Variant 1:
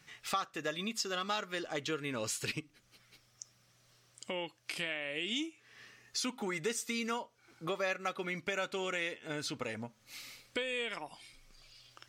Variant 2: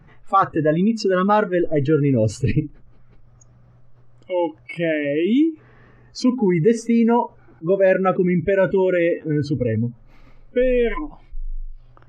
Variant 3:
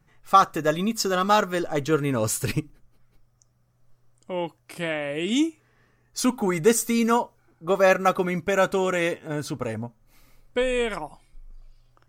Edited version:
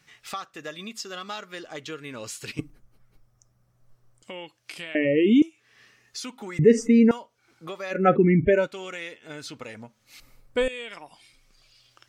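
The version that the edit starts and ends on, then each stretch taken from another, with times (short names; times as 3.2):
1
2.59–4.23 from 3
4.95–5.42 from 2
6.59–7.11 from 2
7.98–8.6 from 2, crossfade 0.16 s
10.2–10.68 from 3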